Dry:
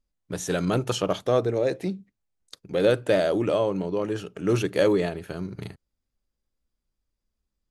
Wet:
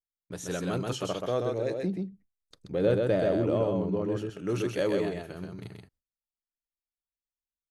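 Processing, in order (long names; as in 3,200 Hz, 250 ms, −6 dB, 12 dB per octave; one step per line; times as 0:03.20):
0:01.76–0:04.17: spectral tilt −2.5 dB per octave
single-tap delay 130 ms −3.5 dB
noise gate with hold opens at −51 dBFS
level −7.5 dB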